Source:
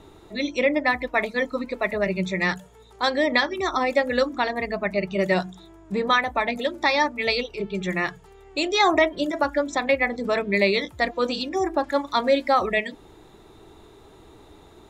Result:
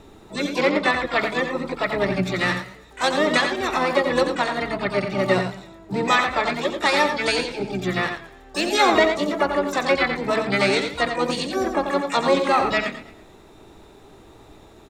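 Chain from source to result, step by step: harmony voices -7 st -8 dB, +7 st -13 dB, +12 st -11 dB; delay 88 ms -7.5 dB; modulated delay 111 ms, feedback 40%, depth 94 cents, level -15.5 dB

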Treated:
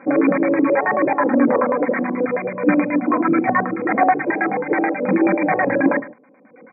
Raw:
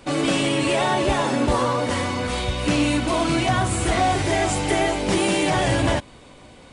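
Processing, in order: loudspeakers at several distances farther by 24 m -8 dB, 46 m -8 dB; reverb removal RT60 1.2 s; comb 3.8 ms, depth 92%; LFO low-pass square 9.3 Hz 450–1800 Hz; FFT band-pass 110–2500 Hz; trim +1 dB

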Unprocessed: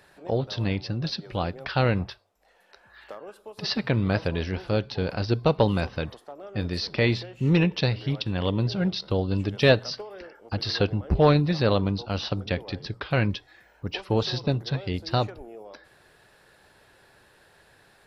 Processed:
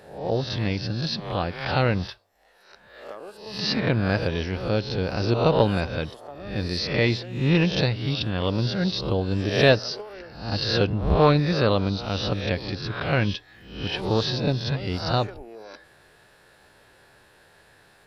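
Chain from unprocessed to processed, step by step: reverse spectral sustain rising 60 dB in 0.61 s

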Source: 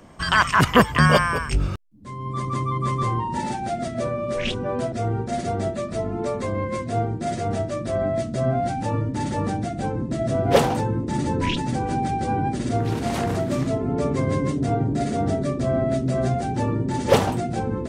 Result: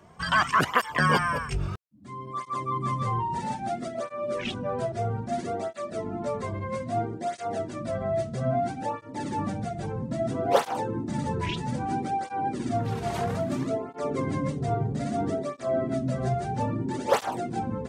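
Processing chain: peaking EQ 940 Hz +4 dB 1.6 oct; cancelling through-zero flanger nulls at 0.61 Hz, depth 4 ms; trim -4 dB

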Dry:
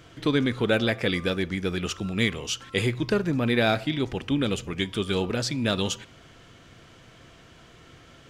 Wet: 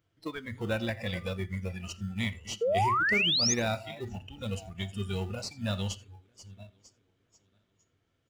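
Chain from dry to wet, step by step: backward echo that repeats 474 ms, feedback 58%, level -12 dB; peaking EQ 99 Hz +9.5 dB 0.25 oct; de-hum 123.8 Hz, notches 38; spectral noise reduction 20 dB; in parallel at -12 dB: sample-rate reducer 1.6 kHz, jitter 0%; on the sum: painted sound rise, 2.61–3.54 s, 440–6700 Hz -18 dBFS; on a send: delay 85 ms -23.5 dB; on the sum: trim -8.5 dB

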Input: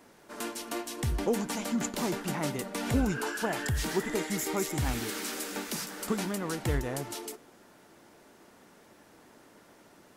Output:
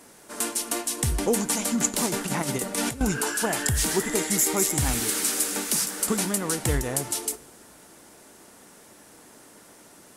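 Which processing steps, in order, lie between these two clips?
peaking EQ 9.4 kHz +12.5 dB 1.3 oct; 2.06–3.01 s: compressor with a negative ratio -31 dBFS, ratio -0.5; reverberation, pre-delay 3 ms, DRR 19 dB; trim +4 dB

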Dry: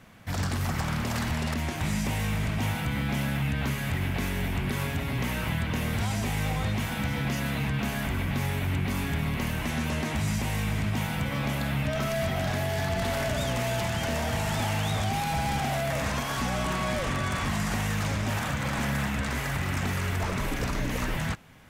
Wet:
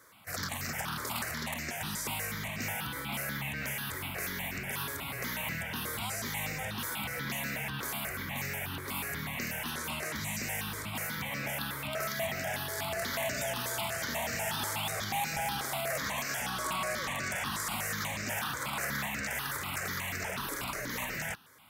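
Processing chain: high-pass 500 Hz 6 dB/octave; treble shelf 6.6 kHz +9 dB; stepped phaser 8.2 Hz 740–3300 Hz

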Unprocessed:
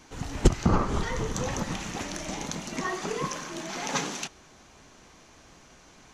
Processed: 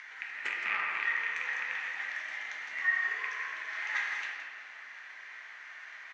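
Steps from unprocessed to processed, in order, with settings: rattle on loud lows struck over -26 dBFS, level -16 dBFS; treble shelf 2.2 kHz -9.5 dB; upward compressor, threshold -34 dBFS; ladder band-pass 2 kHz, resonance 75%; delay 168 ms -9 dB; reverberation RT60 2.3 s, pre-delay 5 ms, DRR -2.5 dB; trim +7.5 dB

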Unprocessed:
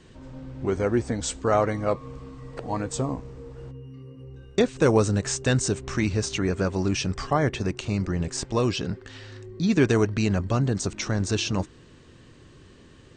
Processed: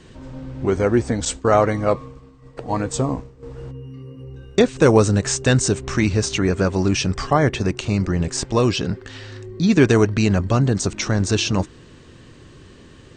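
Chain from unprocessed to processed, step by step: 1.25–3.43 s: expander -31 dBFS; trim +6 dB

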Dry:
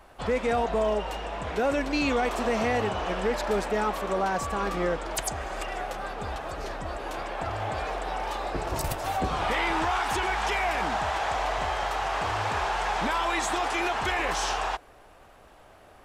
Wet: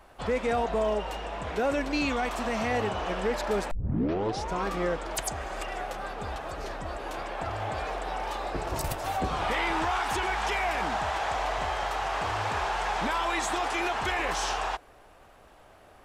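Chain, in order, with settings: 2.05–2.71 s: peaking EQ 420 Hz -6.5 dB 0.77 oct; 3.71 s: tape start 0.95 s; trim -1.5 dB

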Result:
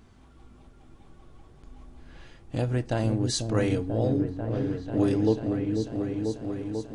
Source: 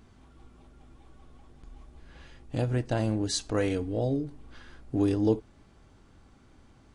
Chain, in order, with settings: delay with an opening low-pass 492 ms, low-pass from 400 Hz, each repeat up 1 oct, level -3 dB; trim +1 dB

